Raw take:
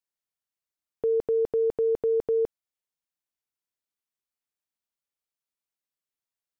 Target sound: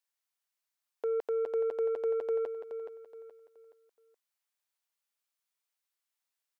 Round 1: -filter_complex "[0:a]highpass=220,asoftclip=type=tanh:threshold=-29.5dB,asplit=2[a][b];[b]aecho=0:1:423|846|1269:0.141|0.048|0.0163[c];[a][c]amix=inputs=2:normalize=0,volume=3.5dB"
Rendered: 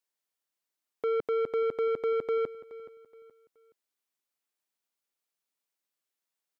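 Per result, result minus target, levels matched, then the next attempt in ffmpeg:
echo-to-direct -8 dB; 250 Hz band +5.0 dB
-filter_complex "[0:a]highpass=220,asoftclip=type=tanh:threshold=-29.5dB,asplit=2[a][b];[b]aecho=0:1:423|846|1269|1692:0.355|0.121|0.041|0.0139[c];[a][c]amix=inputs=2:normalize=0,volume=3.5dB"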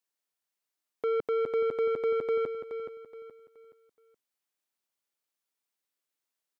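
250 Hz band +5.5 dB
-filter_complex "[0:a]highpass=690,asoftclip=type=tanh:threshold=-29.5dB,asplit=2[a][b];[b]aecho=0:1:423|846|1269|1692:0.355|0.121|0.041|0.0139[c];[a][c]amix=inputs=2:normalize=0,volume=3.5dB"

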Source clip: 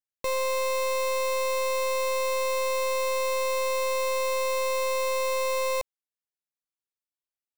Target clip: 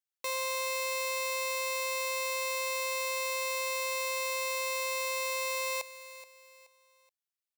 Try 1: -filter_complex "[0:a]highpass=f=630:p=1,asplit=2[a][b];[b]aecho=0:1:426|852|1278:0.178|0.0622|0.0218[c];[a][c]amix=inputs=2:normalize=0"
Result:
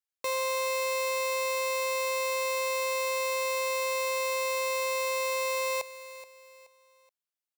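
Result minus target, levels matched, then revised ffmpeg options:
500 Hz band +3.5 dB
-filter_complex "[0:a]highpass=f=1.6k:p=1,asplit=2[a][b];[b]aecho=0:1:426|852|1278:0.178|0.0622|0.0218[c];[a][c]amix=inputs=2:normalize=0"

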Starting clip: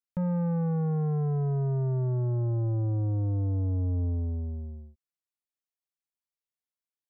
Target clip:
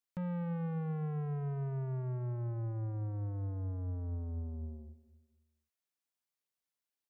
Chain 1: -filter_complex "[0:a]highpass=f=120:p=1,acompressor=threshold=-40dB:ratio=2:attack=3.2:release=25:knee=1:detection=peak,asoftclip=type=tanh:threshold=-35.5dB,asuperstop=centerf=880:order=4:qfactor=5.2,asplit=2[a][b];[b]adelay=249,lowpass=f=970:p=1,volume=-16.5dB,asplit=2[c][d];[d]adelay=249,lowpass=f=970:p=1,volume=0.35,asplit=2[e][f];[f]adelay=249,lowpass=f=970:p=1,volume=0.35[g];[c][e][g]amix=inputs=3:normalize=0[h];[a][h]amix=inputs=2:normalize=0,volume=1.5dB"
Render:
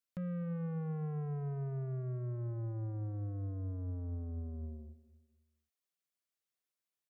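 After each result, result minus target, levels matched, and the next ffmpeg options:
compressor: peak gain reduction +4 dB; 1000 Hz band -3.5 dB
-filter_complex "[0:a]highpass=f=120:p=1,acompressor=threshold=-32dB:ratio=2:attack=3.2:release=25:knee=1:detection=peak,asoftclip=type=tanh:threshold=-35.5dB,asuperstop=centerf=880:order=4:qfactor=5.2,asplit=2[a][b];[b]adelay=249,lowpass=f=970:p=1,volume=-16.5dB,asplit=2[c][d];[d]adelay=249,lowpass=f=970:p=1,volume=0.35,asplit=2[e][f];[f]adelay=249,lowpass=f=970:p=1,volume=0.35[g];[c][e][g]amix=inputs=3:normalize=0[h];[a][h]amix=inputs=2:normalize=0,volume=1.5dB"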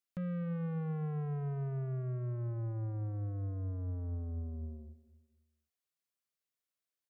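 1000 Hz band -2.5 dB
-filter_complex "[0:a]highpass=f=120:p=1,acompressor=threshold=-32dB:ratio=2:attack=3.2:release=25:knee=1:detection=peak,asoftclip=type=tanh:threshold=-35.5dB,asplit=2[a][b];[b]adelay=249,lowpass=f=970:p=1,volume=-16.5dB,asplit=2[c][d];[d]adelay=249,lowpass=f=970:p=1,volume=0.35,asplit=2[e][f];[f]adelay=249,lowpass=f=970:p=1,volume=0.35[g];[c][e][g]amix=inputs=3:normalize=0[h];[a][h]amix=inputs=2:normalize=0,volume=1.5dB"

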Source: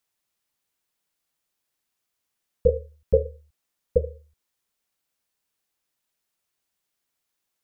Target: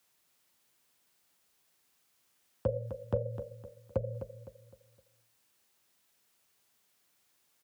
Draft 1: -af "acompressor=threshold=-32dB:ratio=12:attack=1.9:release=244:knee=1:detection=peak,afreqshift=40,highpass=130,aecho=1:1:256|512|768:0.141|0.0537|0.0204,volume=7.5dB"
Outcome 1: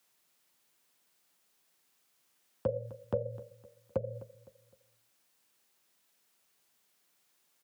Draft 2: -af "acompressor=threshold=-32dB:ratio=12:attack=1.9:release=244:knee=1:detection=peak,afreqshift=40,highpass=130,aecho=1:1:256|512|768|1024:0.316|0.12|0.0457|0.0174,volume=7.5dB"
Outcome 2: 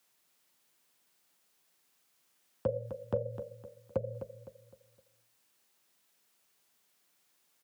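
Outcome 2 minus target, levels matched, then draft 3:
125 Hz band -3.0 dB
-af "acompressor=threshold=-32dB:ratio=12:attack=1.9:release=244:knee=1:detection=peak,afreqshift=40,highpass=63,aecho=1:1:256|512|768|1024:0.316|0.12|0.0457|0.0174,volume=7.5dB"

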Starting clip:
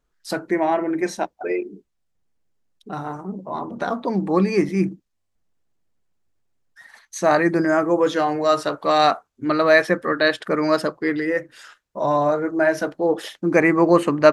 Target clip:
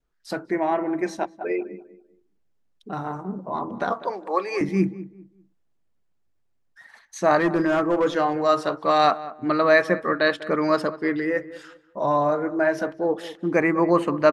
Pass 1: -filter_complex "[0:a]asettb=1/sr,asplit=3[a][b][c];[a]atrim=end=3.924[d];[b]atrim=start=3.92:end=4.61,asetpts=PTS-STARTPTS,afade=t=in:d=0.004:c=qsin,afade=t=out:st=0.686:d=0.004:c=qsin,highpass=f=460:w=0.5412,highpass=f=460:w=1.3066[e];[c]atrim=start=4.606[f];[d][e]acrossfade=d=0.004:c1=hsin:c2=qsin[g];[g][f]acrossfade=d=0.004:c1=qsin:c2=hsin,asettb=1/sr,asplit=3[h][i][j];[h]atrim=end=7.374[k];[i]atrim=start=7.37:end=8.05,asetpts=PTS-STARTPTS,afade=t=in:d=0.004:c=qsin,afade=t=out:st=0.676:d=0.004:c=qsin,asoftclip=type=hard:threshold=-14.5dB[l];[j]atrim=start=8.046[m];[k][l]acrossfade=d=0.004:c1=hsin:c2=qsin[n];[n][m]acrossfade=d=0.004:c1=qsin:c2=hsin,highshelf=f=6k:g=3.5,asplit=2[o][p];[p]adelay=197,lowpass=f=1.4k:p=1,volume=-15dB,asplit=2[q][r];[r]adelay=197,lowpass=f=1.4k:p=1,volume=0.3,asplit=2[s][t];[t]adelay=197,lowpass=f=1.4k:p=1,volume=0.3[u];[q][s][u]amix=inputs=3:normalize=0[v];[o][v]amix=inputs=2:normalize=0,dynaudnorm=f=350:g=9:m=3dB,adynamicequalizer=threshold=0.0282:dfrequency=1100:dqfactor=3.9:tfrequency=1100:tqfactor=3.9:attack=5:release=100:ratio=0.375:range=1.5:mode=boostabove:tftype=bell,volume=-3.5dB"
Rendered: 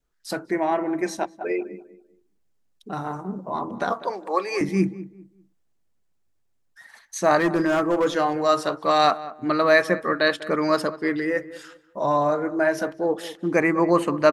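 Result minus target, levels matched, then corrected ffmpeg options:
8000 Hz band +6.0 dB
-filter_complex "[0:a]asettb=1/sr,asplit=3[a][b][c];[a]atrim=end=3.924[d];[b]atrim=start=3.92:end=4.61,asetpts=PTS-STARTPTS,afade=t=in:d=0.004:c=qsin,afade=t=out:st=0.686:d=0.004:c=qsin,highpass=f=460:w=0.5412,highpass=f=460:w=1.3066[e];[c]atrim=start=4.606[f];[d][e]acrossfade=d=0.004:c1=hsin:c2=qsin[g];[g][f]acrossfade=d=0.004:c1=qsin:c2=hsin,asettb=1/sr,asplit=3[h][i][j];[h]atrim=end=7.374[k];[i]atrim=start=7.37:end=8.05,asetpts=PTS-STARTPTS,afade=t=in:d=0.004:c=qsin,afade=t=out:st=0.676:d=0.004:c=qsin,asoftclip=type=hard:threshold=-14.5dB[l];[j]atrim=start=8.046[m];[k][l]acrossfade=d=0.004:c1=hsin:c2=qsin[n];[n][m]acrossfade=d=0.004:c1=qsin:c2=hsin,highshelf=f=6k:g=-8,asplit=2[o][p];[p]adelay=197,lowpass=f=1.4k:p=1,volume=-15dB,asplit=2[q][r];[r]adelay=197,lowpass=f=1.4k:p=1,volume=0.3,asplit=2[s][t];[t]adelay=197,lowpass=f=1.4k:p=1,volume=0.3[u];[q][s][u]amix=inputs=3:normalize=0[v];[o][v]amix=inputs=2:normalize=0,dynaudnorm=f=350:g=9:m=3dB,adynamicequalizer=threshold=0.0282:dfrequency=1100:dqfactor=3.9:tfrequency=1100:tqfactor=3.9:attack=5:release=100:ratio=0.375:range=1.5:mode=boostabove:tftype=bell,volume=-3.5dB"

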